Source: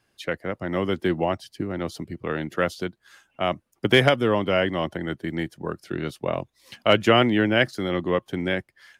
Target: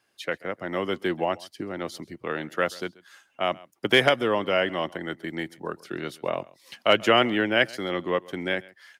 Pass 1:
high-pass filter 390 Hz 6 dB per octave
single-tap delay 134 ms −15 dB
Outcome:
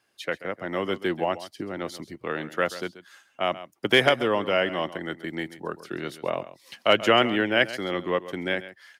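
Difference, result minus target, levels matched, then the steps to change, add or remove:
echo-to-direct +7.5 dB
change: single-tap delay 134 ms −22.5 dB

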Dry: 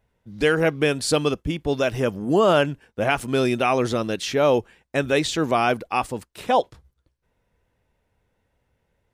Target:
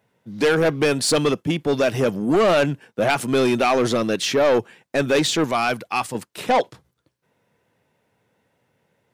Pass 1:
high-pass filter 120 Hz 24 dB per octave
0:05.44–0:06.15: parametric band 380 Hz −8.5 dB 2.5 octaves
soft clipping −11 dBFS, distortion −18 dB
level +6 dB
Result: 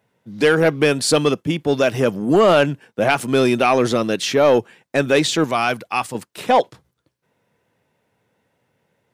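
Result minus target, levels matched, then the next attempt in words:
soft clipping: distortion −8 dB
high-pass filter 120 Hz 24 dB per octave
0:05.44–0:06.15: parametric band 380 Hz −8.5 dB 2.5 octaves
soft clipping −18.5 dBFS, distortion −10 dB
level +6 dB

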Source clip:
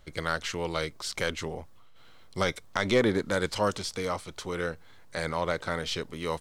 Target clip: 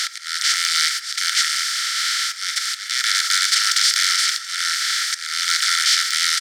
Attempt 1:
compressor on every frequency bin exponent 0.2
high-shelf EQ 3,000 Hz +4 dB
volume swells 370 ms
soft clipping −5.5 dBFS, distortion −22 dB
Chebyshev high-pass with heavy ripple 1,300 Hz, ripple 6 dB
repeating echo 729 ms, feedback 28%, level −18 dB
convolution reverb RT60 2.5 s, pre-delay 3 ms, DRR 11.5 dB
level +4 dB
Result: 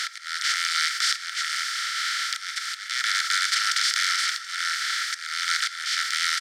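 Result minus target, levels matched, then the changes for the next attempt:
8,000 Hz band −2.5 dB
change: high-shelf EQ 3,000 Hz +15 dB

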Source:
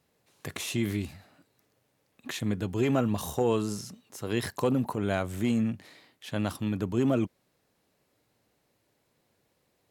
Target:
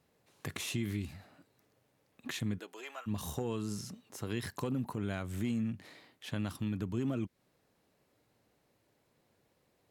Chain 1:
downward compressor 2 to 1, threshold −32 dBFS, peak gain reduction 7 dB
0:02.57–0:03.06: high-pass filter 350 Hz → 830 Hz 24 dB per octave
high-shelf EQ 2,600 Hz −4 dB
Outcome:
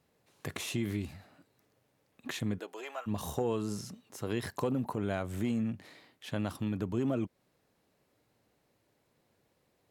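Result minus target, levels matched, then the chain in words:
500 Hz band +3.5 dB
downward compressor 2 to 1, threshold −32 dBFS, peak gain reduction 7 dB
dynamic equaliser 620 Hz, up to −8 dB, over −48 dBFS, Q 0.78
0:02.57–0:03.06: high-pass filter 350 Hz → 830 Hz 24 dB per octave
high-shelf EQ 2,600 Hz −4 dB

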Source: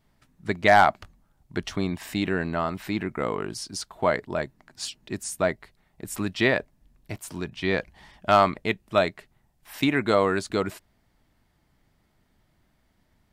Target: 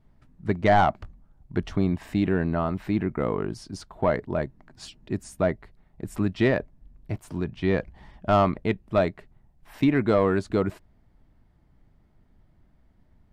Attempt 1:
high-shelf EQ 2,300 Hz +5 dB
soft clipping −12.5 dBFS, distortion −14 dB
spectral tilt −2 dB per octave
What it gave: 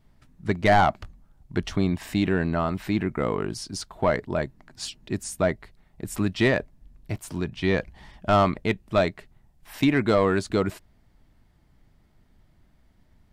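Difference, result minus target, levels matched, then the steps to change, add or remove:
4,000 Hz band +6.0 dB
change: high-shelf EQ 2,300 Hz −6 dB

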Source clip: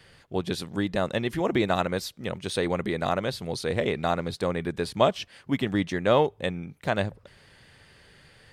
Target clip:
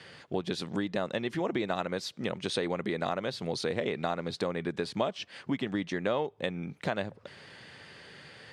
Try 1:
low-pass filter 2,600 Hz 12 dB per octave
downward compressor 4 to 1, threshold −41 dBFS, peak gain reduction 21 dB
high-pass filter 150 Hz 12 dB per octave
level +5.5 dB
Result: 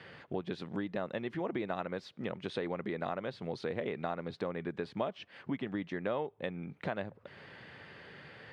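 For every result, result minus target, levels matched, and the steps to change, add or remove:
8,000 Hz band −14.0 dB; downward compressor: peak gain reduction +4.5 dB
change: low-pass filter 6,800 Hz 12 dB per octave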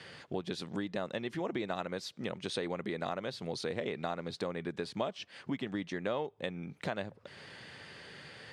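downward compressor: peak gain reduction +5 dB
change: downward compressor 4 to 1, threshold −34.5 dBFS, peak gain reduction 16.5 dB

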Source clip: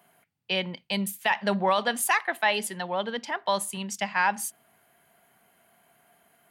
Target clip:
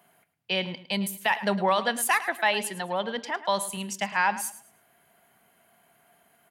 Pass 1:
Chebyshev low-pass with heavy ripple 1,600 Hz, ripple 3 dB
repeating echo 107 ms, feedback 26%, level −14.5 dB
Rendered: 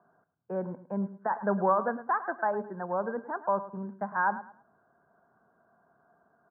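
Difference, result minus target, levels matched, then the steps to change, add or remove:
2,000 Hz band −5.0 dB
remove: Chebyshev low-pass with heavy ripple 1,600 Hz, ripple 3 dB

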